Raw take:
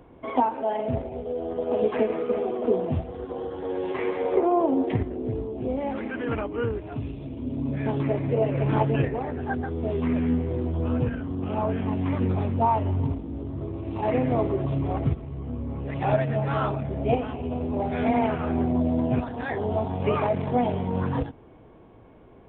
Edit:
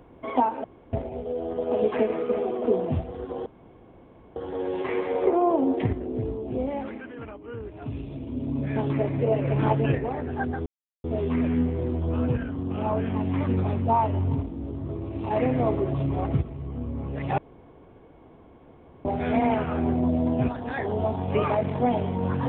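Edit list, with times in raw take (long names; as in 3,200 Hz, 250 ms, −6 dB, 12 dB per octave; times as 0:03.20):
0:00.64–0:00.93: fill with room tone
0:03.46: splice in room tone 0.90 s
0:05.73–0:07.13: duck −11 dB, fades 0.50 s
0:09.76: splice in silence 0.38 s
0:16.10–0:17.77: fill with room tone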